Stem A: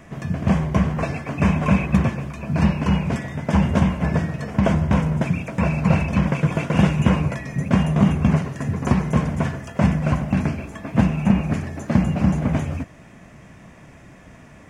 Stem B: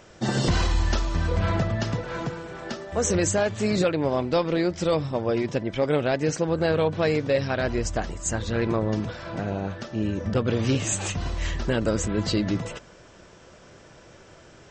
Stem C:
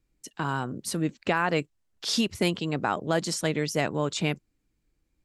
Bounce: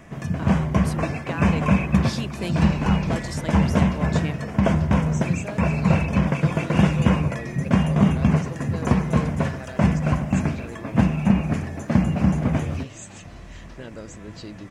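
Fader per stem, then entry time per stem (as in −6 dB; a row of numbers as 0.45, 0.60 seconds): −1.0, −14.0, −6.5 decibels; 0.00, 2.10, 0.00 seconds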